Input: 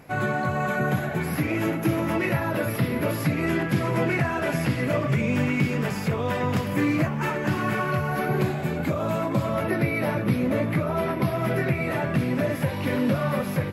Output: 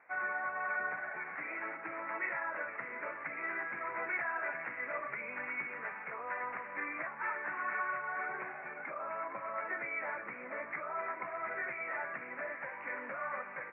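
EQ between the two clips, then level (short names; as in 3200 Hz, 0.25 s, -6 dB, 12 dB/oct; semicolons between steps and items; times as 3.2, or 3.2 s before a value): HPF 1400 Hz 12 dB/oct; steep low-pass 2300 Hz 72 dB/oct; air absorption 420 m; 0.0 dB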